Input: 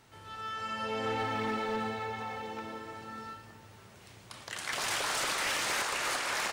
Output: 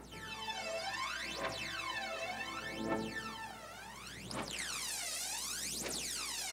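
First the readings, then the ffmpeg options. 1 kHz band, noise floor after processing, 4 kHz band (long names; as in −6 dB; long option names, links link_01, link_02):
−8.5 dB, −50 dBFS, −4.0 dB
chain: -af "afftfilt=real='re*lt(hypot(re,im),0.0316)':imag='im*lt(hypot(re,im),0.0316)':win_size=1024:overlap=0.75,adynamicequalizer=threshold=0.00141:dfrequency=3200:dqfactor=3.7:tfrequency=3200:tqfactor=3.7:attack=5:release=100:ratio=0.375:range=3:mode=cutabove:tftype=bell,highpass=frequency=160:width=0.5412,highpass=frequency=160:width=1.3066,acompressor=threshold=-41dB:ratio=6,alimiter=level_in=14.5dB:limit=-24dB:level=0:latency=1:release=14,volume=-14.5dB,aeval=exprs='val(0)+0.000224*(sin(2*PI*60*n/s)+sin(2*PI*2*60*n/s)/2+sin(2*PI*3*60*n/s)/3+sin(2*PI*4*60*n/s)/4+sin(2*PI*5*60*n/s)/5)':channel_layout=same,aphaser=in_gain=1:out_gain=1:delay=1.6:decay=0.78:speed=0.68:type=triangular,aresample=32000,aresample=44100,volume=3.5dB"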